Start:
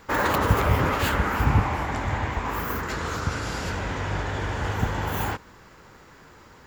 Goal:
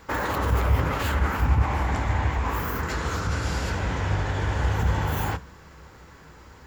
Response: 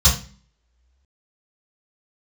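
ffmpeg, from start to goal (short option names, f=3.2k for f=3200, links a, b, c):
-filter_complex "[0:a]alimiter=limit=-18dB:level=0:latency=1:release=57,asplit=2[a][b];[1:a]atrim=start_sample=2205[c];[b][c]afir=irnorm=-1:irlink=0,volume=-31.5dB[d];[a][d]amix=inputs=2:normalize=0"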